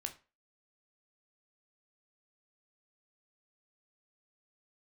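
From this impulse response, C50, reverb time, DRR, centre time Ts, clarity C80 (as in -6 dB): 14.5 dB, 0.35 s, 5.0 dB, 9 ms, 20.5 dB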